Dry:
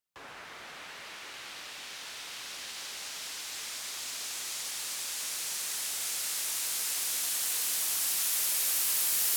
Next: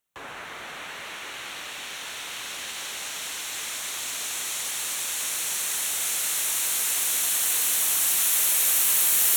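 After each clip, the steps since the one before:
parametric band 4,900 Hz −13.5 dB 0.23 octaves
level +8 dB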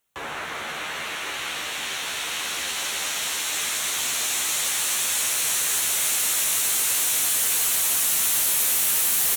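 in parallel at −1.5 dB: brickwall limiter −19 dBFS, peak gain reduction 9.5 dB
on the sum: hard clipping −20.5 dBFS, distortion −9 dB
double-tracking delay 13 ms −5 dB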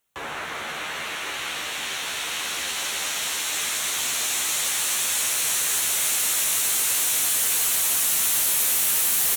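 no processing that can be heard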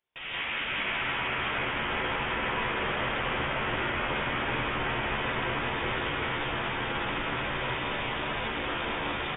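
single-tap delay 378 ms −4 dB
reverb whose tail is shaped and stops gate 210 ms rising, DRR −6.5 dB
voice inversion scrambler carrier 3,600 Hz
level −7.5 dB

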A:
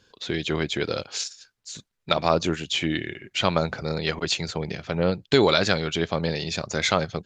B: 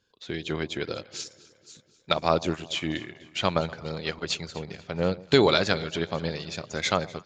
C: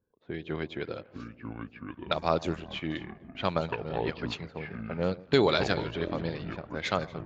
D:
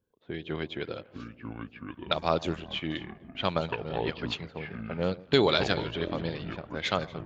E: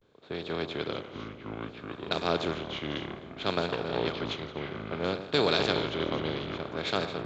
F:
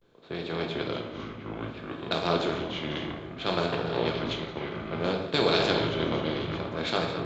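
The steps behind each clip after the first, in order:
delay that swaps between a low-pass and a high-pass 123 ms, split 910 Hz, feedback 76%, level −13.5 dB; expander for the loud parts 1.5 to 1, over −39 dBFS
low-pass that shuts in the quiet parts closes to 760 Hz, open at −20.5 dBFS; high-shelf EQ 4,200 Hz −5.5 dB; delay with pitch and tempo change per echo 736 ms, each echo −6 semitones, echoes 2, each echo −6 dB; level −3.5 dB
parametric band 3,200 Hz +5.5 dB 0.5 octaves
compressor on every frequency bin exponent 0.4; pitch vibrato 0.6 Hz 98 cents; multiband upward and downward expander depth 70%; level −8 dB
convolution reverb RT60 0.75 s, pre-delay 6 ms, DRR 2.5 dB

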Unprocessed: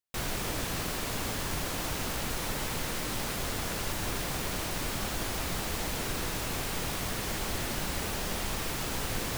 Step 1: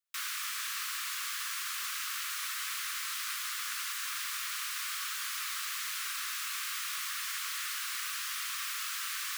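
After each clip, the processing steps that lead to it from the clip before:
Butterworth high-pass 1,100 Hz 96 dB per octave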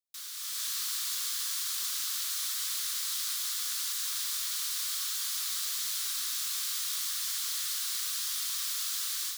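flat-topped bell 1,700 Hz −13 dB
automatic gain control gain up to 9.5 dB
level −4 dB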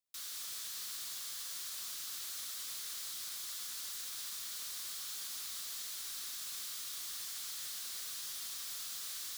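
brickwall limiter −30 dBFS, peak gain reduction 8.5 dB
soft clipping −38.5 dBFS, distortion −12 dB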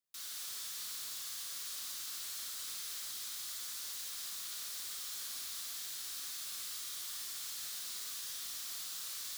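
flanger 0.23 Hz, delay 5.2 ms, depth 7.7 ms, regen −71%
flutter between parallel walls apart 9.6 metres, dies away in 0.63 s
level +3 dB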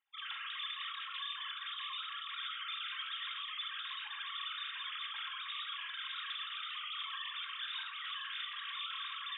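three sine waves on the formant tracks
rectangular room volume 820 cubic metres, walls furnished, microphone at 2.2 metres
level −1.5 dB

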